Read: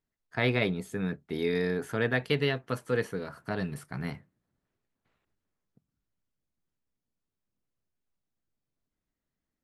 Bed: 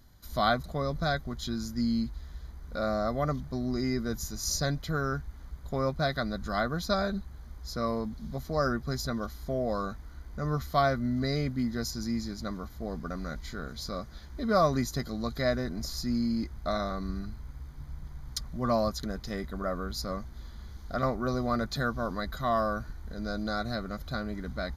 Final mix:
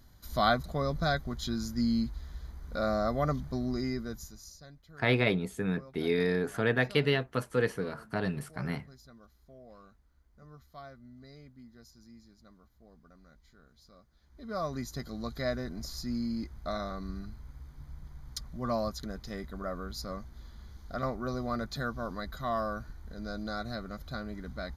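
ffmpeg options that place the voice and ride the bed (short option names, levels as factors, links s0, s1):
-filter_complex "[0:a]adelay=4650,volume=1.06[s0];[1:a]volume=7.94,afade=t=out:st=3.53:d=1:silence=0.0749894,afade=t=in:st=14.17:d=1.01:silence=0.125893[s1];[s0][s1]amix=inputs=2:normalize=0"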